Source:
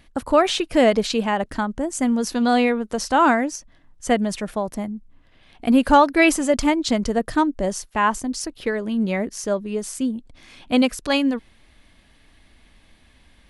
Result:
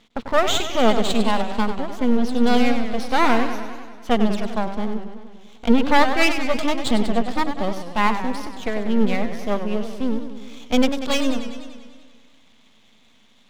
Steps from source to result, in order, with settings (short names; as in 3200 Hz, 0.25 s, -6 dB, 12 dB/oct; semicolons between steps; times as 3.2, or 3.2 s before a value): speaker cabinet 180–4300 Hz, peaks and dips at 220 Hz +8 dB, 330 Hz -9 dB, 530 Hz -3 dB, 1700 Hz -8 dB, 3500 Hz +7 dB; half-wave rectifier; warbling echo 98 ms, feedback 67%, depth 148 cents, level -9.5 dB; gain +3.5 dB